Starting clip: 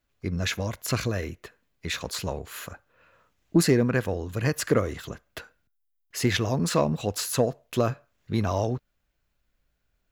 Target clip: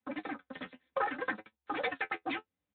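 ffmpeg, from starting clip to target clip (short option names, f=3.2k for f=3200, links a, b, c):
-af "asetrate=162288,aresample=44100,afreqshift=-69,aecho=1:1:3.9:0.96,flanger=delay=9.2:depth=2.7:regen=40:speed=0.67:shape=sinusoidal,volume=-8.5dB" -ar 8000 -c:a libspeex -b:a 18k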